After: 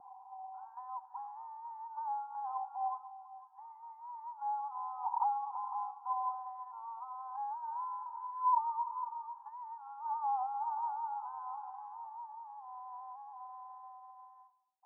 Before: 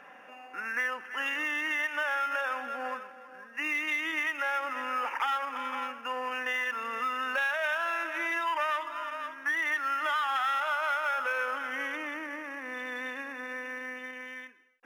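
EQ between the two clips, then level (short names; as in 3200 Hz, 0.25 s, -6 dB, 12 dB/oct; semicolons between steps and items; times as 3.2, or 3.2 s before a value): brick-wall FIR high-pass 740 Hz; rippled Chebyshev low-pass 1000 Hz, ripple 3 dB; air absorption 420 m; +8.0 dB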